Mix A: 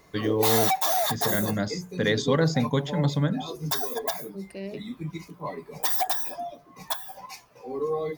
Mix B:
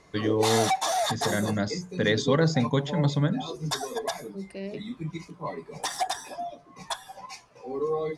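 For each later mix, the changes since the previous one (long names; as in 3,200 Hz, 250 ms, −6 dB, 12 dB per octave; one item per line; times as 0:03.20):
master: add low-pass filter 9,500 Hz 24 dB per octave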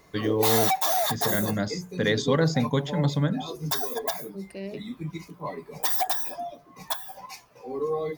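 master: remove low-pass filter 9,500 Hz 24 dB per octave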